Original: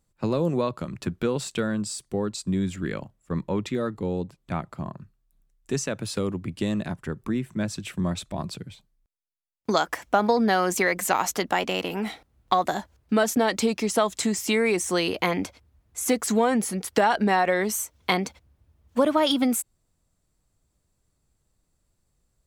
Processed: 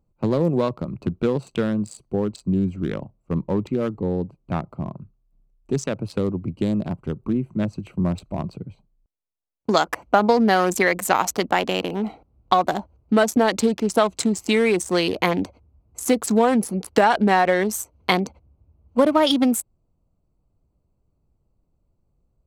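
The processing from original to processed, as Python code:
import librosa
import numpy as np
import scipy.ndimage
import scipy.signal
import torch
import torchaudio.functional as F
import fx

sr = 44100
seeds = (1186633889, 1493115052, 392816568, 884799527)

y = fx.wiener(x, sr, points=25)
y = F.gain(torch.from_numpy(y), 4.5).numpy()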